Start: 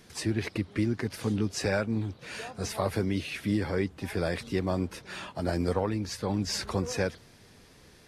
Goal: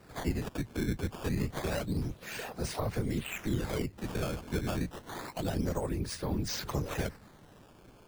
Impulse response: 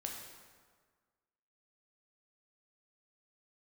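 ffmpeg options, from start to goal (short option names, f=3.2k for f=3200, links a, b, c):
-filter_complex "[0:a]afftfilt=real='hypot(re,im)*cos(2*PI*random(0))':imag='hypot(re,im)*sin(2*PI*random(1))':win_size=512:overlap=0.75,acrusher=samples=13:mix=1:aa=0.000001:lfo=1:lforange=20.8:lforate=0.28,acrossover=split=160[a][b];[b]acompressor=threshold=-40dB:ratio=2.5[c];[a][c]amix=inputs=2:normalize=0,volume=5.5dB"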